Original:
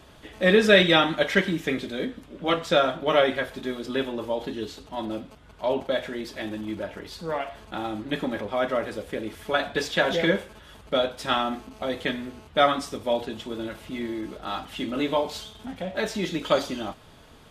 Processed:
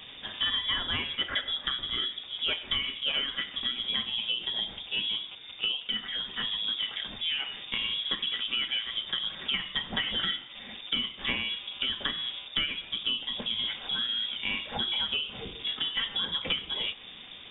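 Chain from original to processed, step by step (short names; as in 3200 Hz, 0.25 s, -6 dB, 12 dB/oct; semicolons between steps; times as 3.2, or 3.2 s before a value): compressor 8:1, threshold -32 dBFS, peak gain reduction 20.5 dB; 5.72–6.68 notch comb 250 Hz; inverted band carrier 3600 Hz; gain +4.5 dB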